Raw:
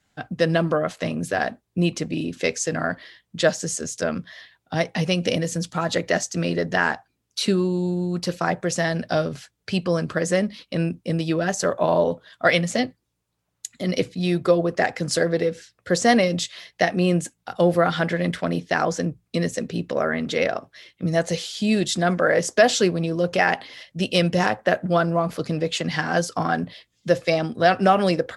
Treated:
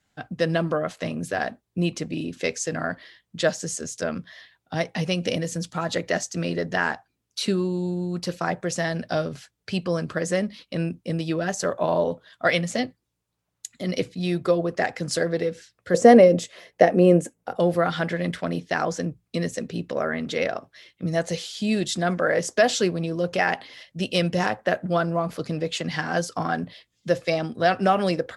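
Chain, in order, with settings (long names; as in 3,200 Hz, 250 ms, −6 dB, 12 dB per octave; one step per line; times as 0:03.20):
0:15.94–0:17.60: graphic EQ with 10 bands 250 Hz +5 dB, 500 Hz +12 dB, 4,000 Hz −8 dB
level −3 dB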